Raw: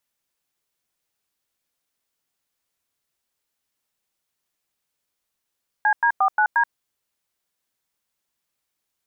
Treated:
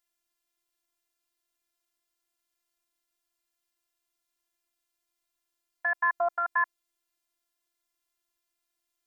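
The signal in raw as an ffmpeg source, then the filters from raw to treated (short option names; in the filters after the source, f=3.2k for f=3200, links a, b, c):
-f lavfi -i "aevalsrc='0.133*clip(min(mod(t,0.177),0.079-mod(t,0.177))/0.002,0,1)*(eq(floor(t/0.177),0)*(sin(2*PI*852*mod(t,0.177))+sin(2*PI*1633*mod(t,0.177)))+eq(floor(t/0.177),1)*(sin(2*PI*941*mod(t,0.177))+sin(2*PI*1633*mod(t,0.177)))+eq(floor(t/0.177),2)*(sin(2*PI*770*mod(t,0.177))+sin(2*PI*1209*mod(t,0.177)))+eq(floor(t/0.177),3)*(sin(2*PI*852*mod(t,0.177))+sin(2*PI*1477*mod(t,0.177)))+eq(floor(t/0.177),4)*(sin(2*PI*941*mod(t,0.177))+sin(2*PI*1633*mod(t,0.177))))':d=0.885:s=44100"
-af "afftfilt=real='hypot(re,im)*cos(PI*b)':imag='0':win_size=512:overlap=0.75"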